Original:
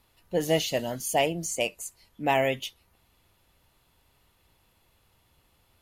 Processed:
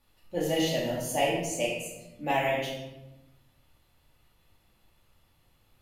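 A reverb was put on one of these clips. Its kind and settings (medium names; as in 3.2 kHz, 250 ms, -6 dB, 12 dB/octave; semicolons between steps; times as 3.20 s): simulated room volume 400 m³, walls mixed, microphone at 2.4 m; trim -8 dB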